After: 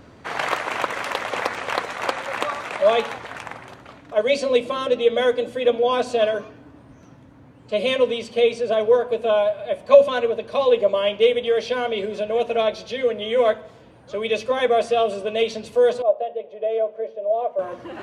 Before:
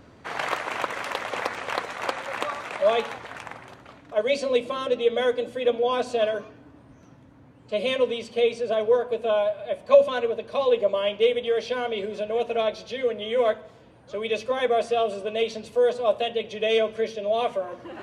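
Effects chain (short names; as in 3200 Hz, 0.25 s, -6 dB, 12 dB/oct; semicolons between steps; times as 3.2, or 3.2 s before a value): 16.02–17.59 band-pass 610 Hz, Q 2.9; gain +4 dB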